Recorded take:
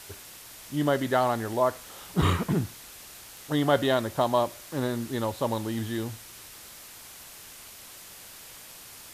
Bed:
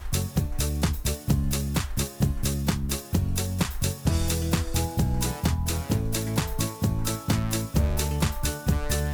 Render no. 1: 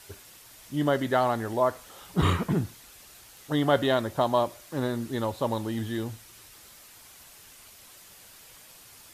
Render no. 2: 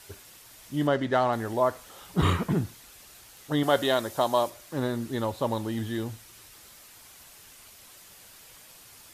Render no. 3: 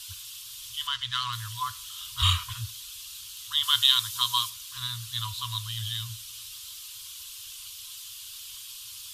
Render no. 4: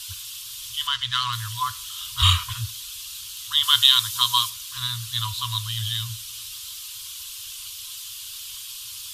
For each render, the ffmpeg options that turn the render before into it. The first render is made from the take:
ffmpeg -i in.wav -af "afftdn=noise_reduction=6:noise_floor=-47" out.wav
ffmpeg -i in.wav -filter_complex "[0:a]asettb=1/sr,asplit=3[link_01][link_02][link_03];[link_01]atrim=end=0.874[link_04];[link_02]atrim=start=0.87:end=1.33,asetpts=PTS-STARTPTS,afade=type=in:duration=0.004:curve=qsin,afade=type=out:start_time=0.456:duration=0.004:curve=qsin,adynamicsmooth=sensitivity=5.5:basefreq=5000[link_05];[link_03]atrim=start=1.326[link_06];[link_04][link_05]acrossfade=duration=0.004:curve1=hsin:curve2=qsin[link_07];[link_07][link_06]acrossfade=duration=0.004:curve1=qsin:curve2=hsin,asettb=1/sr,asplit=3[link_08][link_09][link_10];[link_08]atrim=end=3.634[link_11];[link_09]atrim=start=3.63:end=4.5,asetpts=PTS-STARTPTS,afade=type=in:duration=0.004:curve=qsin,afade=type=out:start_time=0.866:duration=0.004:curve=qsin,bass=frequency=250:gain=-7,treble=frequency=4000:gain=7[link_12];[link_10]atrim=start=4.496[link_13];[link_11][link_12]acrossfade=duration=0.004:curve1=hsin:curve2=qsin[link_14];[link_14][link_13]acrossfade=duration=0.004:curve1=qsin:curve2=hsin" out.wav
ffmpeg -i in.wav -af "afftfilt=real='re*(1-between(b*sr/4096,120,960))':imag='im*(1-between(b*sr/4096,120,960))':win_size=4096:overlap=0.75,highshelf=frequency=2500:width_type=q:width=3:gain=8" out.wav
ffmpeg -i in.wav -af "volume=5.5dB,alimiter=limit=-1dB:level=0:latency=1" out.wav

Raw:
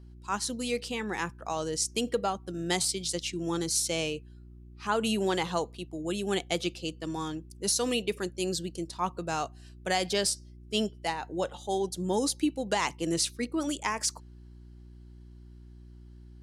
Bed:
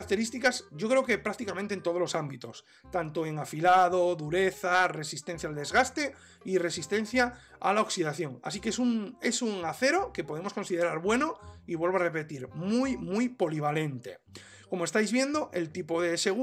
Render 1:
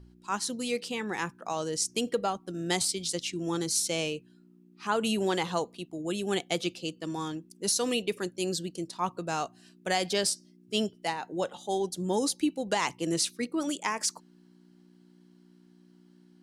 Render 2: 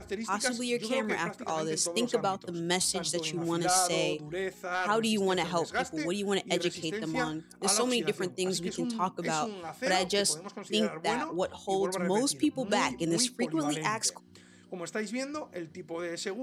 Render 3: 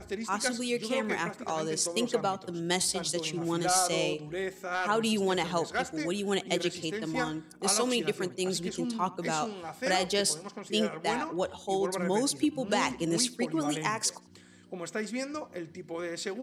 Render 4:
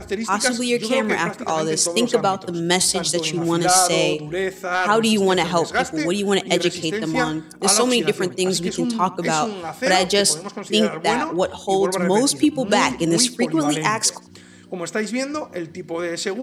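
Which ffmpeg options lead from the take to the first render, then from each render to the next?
ffmpeg -i in.wav -af "bandreject=frequency=60:width_type=h:width=4,bandreject=frequency=120:width_type=h:width=4" out.wav
ffmpeg -i in.wav -i bed.wav -filter_complex "[1:a]volume=-7.5dB[link_01];[0:a][link_01]amix=inputs=2:normalize=0" out.wav
ffmpeg -i in.wav -filter_complex "[0:a]asplit=2[link_01][link_02];[link_02]adelay=90,lowpass=frequency=4400:poles=1,volume=-21.5dB,asplit=2[link_03][link_04];[link_04]adelay=90,lowpass=frequency=4400:poles=1,volume=0.46,asplit=2[link_05][link_06];[link_06]adelay=90,lowpass=frequency=4400:poles=1,volume=0.46[link_07];[link_01][link_03][link_05][link_07]amix=inputs=4:normalize=0" out.wav
ffmpeg -i in.wav -af "volume=10.5dB" out.wav

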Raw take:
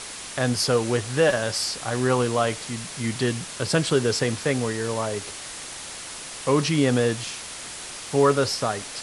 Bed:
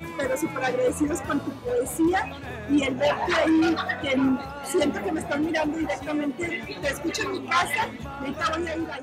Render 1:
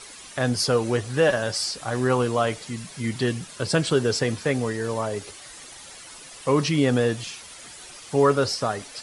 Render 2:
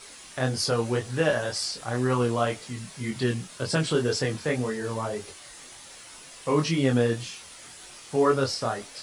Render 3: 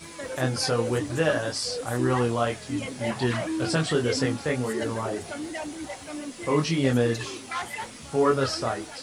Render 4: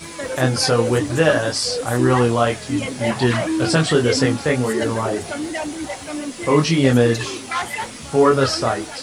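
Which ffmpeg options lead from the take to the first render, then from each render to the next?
ffmpeg -i in.wav -af "afftdn=noise_reduction=10:noise_floor=-37" out.wav
ffmpeg -i in.wav -af "flanger=delay=22.5:depth=3.6:speed=1.9,acrusher=bits=10:mix=0:aa=0.000001" out.wav
ffmpeg -i in.wav -i bed.wav -filter_complex "[1:a]volume=-9.5dB[link_01];[0:a][link_01]amix=inputs=2:normalize=0" out.wav
ffmpeg -i in.wav -af "volume=8dB,alimiter=limit=-3dB:level=0:latency=1" out.wav

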